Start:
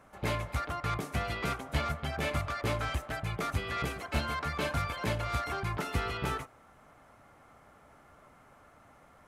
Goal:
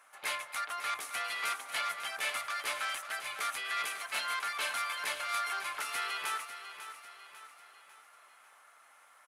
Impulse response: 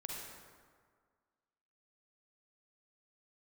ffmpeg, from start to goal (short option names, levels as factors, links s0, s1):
-filter_complex "[0:a]highpass=1300,equalizer=f=10000:w=2.8:g=8,asplit=2[s0][s1];[s1]aecho=0:1:547|1094|1641|2188|2735:0.282|0.132|0.0623|0.0293|0.0138[s2];[s0][s2]amix=inputs=2:normalize=0,volume=1.41"